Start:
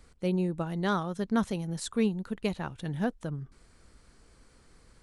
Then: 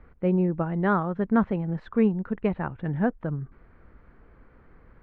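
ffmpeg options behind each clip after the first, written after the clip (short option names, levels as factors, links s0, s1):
-af "lowpass=f=2000:w=0.5412,lowpass=f=2000:w=1.3066,volume=1.88"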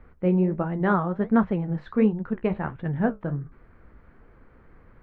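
-af "flanger=delay=7.9:depth=9.6:regen=-55:speed=1.4:shape=sinusoidal,volume=1.78"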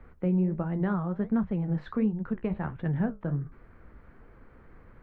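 -filter_complex "[0:a]acrossover=split=190[s0][s1];[s1]acompressor=threshold=0.0282:ratio=6[s2];[s0][s2]amix=inputs=2:normalize=0"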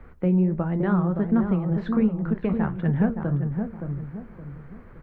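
-filter_complex "[0:a]asplit=2[s0][s1];[s1]adelay=569,lowpass=f=1000:p=1,volume=0.531,asplit=2[s2][s3];[s3]adelay=569,lowpass=f=1000:p=1,volume=0.38,asplit=2[s4][s5];[s5]adelay=569,lowpass=f=1000:p=1,volume=0.38,asplit=2[s6][s7];[s7]adelay=569,lowpass=f=1000:p=1,volume=0.38,asplit=2[s8][s9];[s9]adelay=569,lowpass=f=1000:p=1,volume=0.38[s10];[s0][s2][s4][s6][s8][s10]amix=inputs=6:normalize=0,volume=1.78"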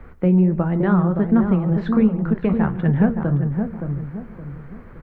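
-af "aecho=1:1:143:0.106,volume=1.78"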